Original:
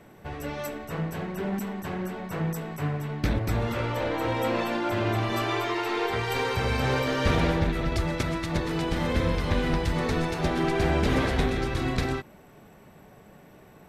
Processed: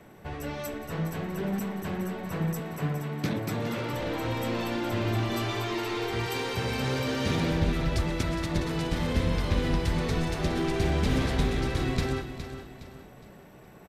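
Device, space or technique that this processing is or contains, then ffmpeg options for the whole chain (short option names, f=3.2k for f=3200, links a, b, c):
one-band saturation: -filter_complex "[0:a]asettb=1/sr,asplit=3[a][b][c];[a]atrim=end=2.594[d];[b]atrim=start=2.59:end=3.93,asetpts=PTS-STARTPTS,afade=t=in:d=0.004:c=qsin,afade=t=out:st=1.336:d=0.004:c=qsin,highpass=f=130:w=0.5412,highpass=f=130:w=1.3066[e];[c]atrim=start=3.926[f];[d][e]acrossfade=d=0.004:c1=hsin:c2=qsin[g];[g][f]acrossfade=d=0.004:c1=qsin:c2=hsin,asettb=1/sr,asplit=3[h][i][j];[h]atrim=end=6.264[k];[i]atrim=start=6.26:end=7.51,asetpts=PTS-STARTPTS,afade=t=in:d=0.004:c=qsin,afade=t=out:st=1.246:d=0.004:c=qsin,highpass=120[l];[j]atrim=start=7.506[m];[k][l]acrossfade=d=0.004:c1=hsin:c2=qsin[n];[n][m]acrossfade=d=0.004:c1=qsin:c2=hsin,acrossover=split=350|3000[o][p][q];[p]asoftclip=type=tanh:threshold=-33.5dB[r];[o][r][q]amix=inputs=3:normalize=0,aecho=1:1:414|828|1242|1656:0.299|0.113|0.0431|0.0164"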